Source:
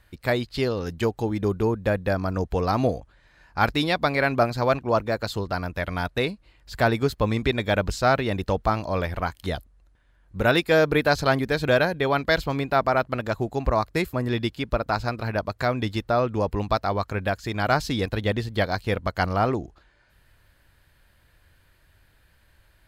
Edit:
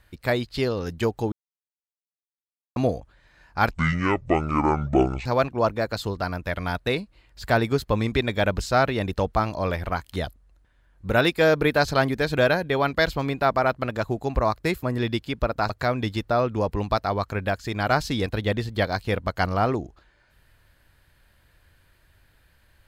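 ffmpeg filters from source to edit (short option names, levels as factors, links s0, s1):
-filter_complex "[0:a]asplit=6[s0][s1][s2][s3][s4][s5];[s0]atrim=end=1.32,asetpts=PTS-STARTPTS,afade=t=out:st=1.316:d=0.004:c=hsin[s6];[s1]atrim=start=1.32:end=2.76,asetpts=PTS-STARTPTS,volume=0[s7];[s2]atrim=start=2.76:end=3.714,asetpts=PTS-STARTPTS,afade=t=in:d=0.004:c=hsin[s8];[s3]atrim=start=3.71:end=4.56,asetpts=PTS-STARTPTS,asetrate=24255,aresample=44100[s9];[s4]atrim=start=4.556:end=15.002[s10];[s5]atrim=start=15.488[s11];[s6][s7][s8]concat=n=3:v=0:a=1[s12];[s12][s9]acrossfade=d=0.004:c1=hsin:c2=hsin[s13];[s13][s10]acrossfade=d=0.004:c1=hsin:c2=hsin[s14];[s14][s11]acrossfade=d=0.004:c1=hsin:c2=hsin"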